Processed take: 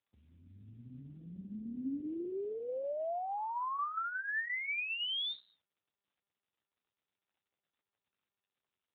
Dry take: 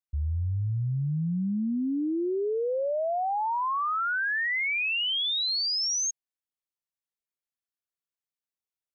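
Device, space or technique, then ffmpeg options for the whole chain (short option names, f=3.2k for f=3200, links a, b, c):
voicemail: -filter_complex "[0:a]asettb=1/sr,asplit=3[a][b][c];[a]atrim=end=1.604[d];[b]atrim=start=1.6:end=2.61,asetpts=PTS-STARTPTS,afade=t=in:d=0.004:c=qsin,afade=t=out:st=1.006:d=0.004:c=qsin,lowshelf=f=72:g=-4.5[e];[c]atrim=start=2.606[f];[d][e]acrossfade=d=0.004:c1=hsin:c2=qsin[g];[g][f]acrossfade=d=0.004:c1=qsin:c2=hsin,highpass=340,lowpass=3.1k,acompressor=threshold=-30dB:ratio=12" -ar 8000 -c:a libopencore_amrnb -b:a 7400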